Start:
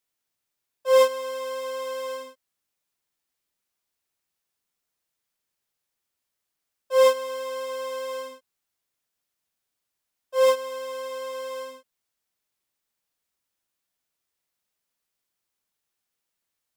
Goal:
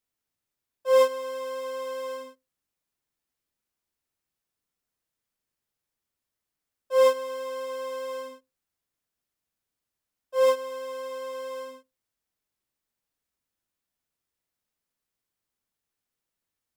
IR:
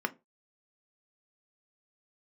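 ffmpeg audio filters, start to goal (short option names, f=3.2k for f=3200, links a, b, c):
-filter_complex "[0:a]lowshelf=f=330:g=9.5,asplit=2[a][b];[1:a]atrim=start_sample=2205[c];[b][c]afir=irnorm=-1:irlink=0,volume=-20dB[d];[a][d]amix=inputs=2:normalize=0,volume=-5.5dB"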